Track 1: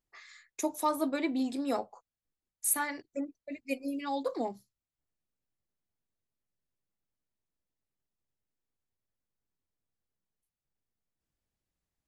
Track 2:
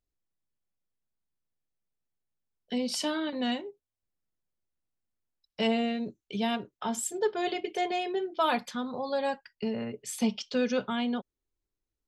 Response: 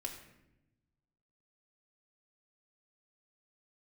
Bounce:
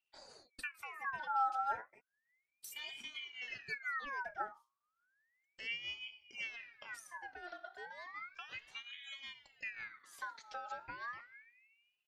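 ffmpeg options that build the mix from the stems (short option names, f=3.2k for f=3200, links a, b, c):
-filter_complex "[0:a]lowpass=11k,asplit=2[a][b];[b]adelay=3.4,afreqshift=0.38[c];[a][c]amix=inputs=2:normalize=1,volume=3dB,asplit=2[d][e];[1:a]tremolo=f=5.6:d=0.66,volume=-11dB,asplit=2[f][g];[g]volume=-4.5dB[h];[e]apad=whole_len=532549[i];[f][i]sidechaincompress=threshold=-37dB:ratio=8:attack=16:release=528[j];[2:a]atrim=start_sample=2205[k];[h][k]afir=irnorm=-1:irlink=0[l];[d][j][l]amix=inputs=3:normalize=0,bass=f=250:g=2,treble=f=4k:g=-5,acrossover=split=310[m][n];[n]acompressor=threshold=-47dB:ratio=6[o];[m][o]amix=inputs=2:normalize=0,aeval=exprs='val(0)*sin(2*PI*1900*n/s+1900*0.45/0.33*sin(2*PI*0.33*n/s))':c=same"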